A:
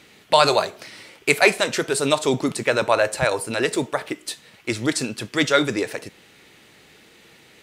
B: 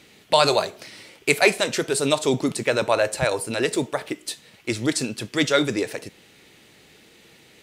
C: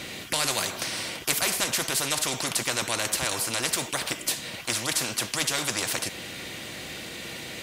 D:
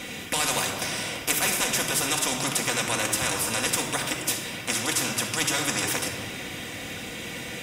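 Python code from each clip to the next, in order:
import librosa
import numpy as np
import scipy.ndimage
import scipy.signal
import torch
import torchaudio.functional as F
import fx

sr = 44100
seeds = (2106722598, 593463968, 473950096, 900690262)

y1 = fx.peak_eq(x, sr, hz=1300.0, db=-4.0, octaves=1.6)
y2 = fx.notch_comb(y1, sr, f0_hz=430.0)
y2 = fx.spectral_comp(y2, sr, ratio=4.0)
y3 = fx.notch(y2, sr, hz=4300.0, q=5.1)
y3 = fx.room_shoebox(y3, sr, seeds[0], volume_m3=3300.0, walls='mixed', distance_m=1.9)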